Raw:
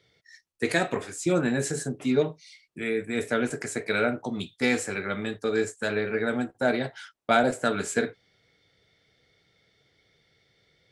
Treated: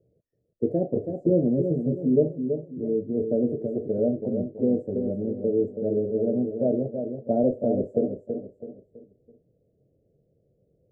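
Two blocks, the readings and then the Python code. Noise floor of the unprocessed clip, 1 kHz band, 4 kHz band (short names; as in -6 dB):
-68 dBFS, -11.5 dB, under -40 dB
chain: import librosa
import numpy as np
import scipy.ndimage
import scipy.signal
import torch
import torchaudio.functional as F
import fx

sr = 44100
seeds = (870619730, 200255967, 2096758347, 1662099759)

y = scipy.signal.sosfilt(scipy.signal.ellip(4, 1.0, 50, 590.0, 'lowpass', fs=sr, output='sos'), x)
y = fx.echo_feedback(y, sr, ms=328, feedback_pct=38, wet_db=-7.0)
y = F.gain(torch.from_numpy(y), 3.5).numpy()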